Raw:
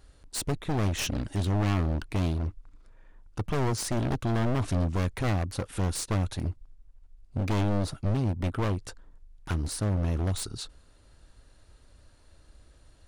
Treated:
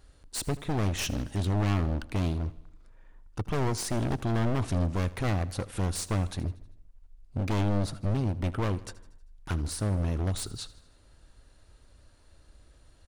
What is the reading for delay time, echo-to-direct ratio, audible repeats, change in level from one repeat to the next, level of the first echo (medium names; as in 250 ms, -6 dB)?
79 ms, -17.5 dB, 4, -5.0 dB, -19.0 dB